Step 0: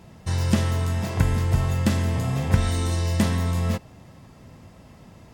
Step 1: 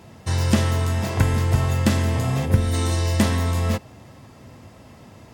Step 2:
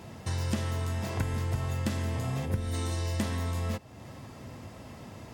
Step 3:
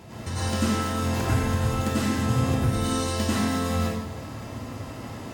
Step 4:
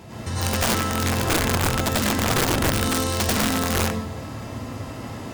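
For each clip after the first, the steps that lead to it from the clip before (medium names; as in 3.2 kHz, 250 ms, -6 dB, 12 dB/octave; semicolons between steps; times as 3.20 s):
time-frequency box 2.46–2.73 s, 620–8900 Hz -7 dB; high-pass 73 Hz; peaking EQ 170 Hz -9 dB 0.26 oct; trim +4 dB
compression 2:1, threshold -37 dBFS, peak gain reduction 14 dB
plate-style reverb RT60 1.1 s, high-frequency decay 0.9×, pre-delay 80 ms, DRR -8.5 dB
integer overflow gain 18 dB; trim +3 dB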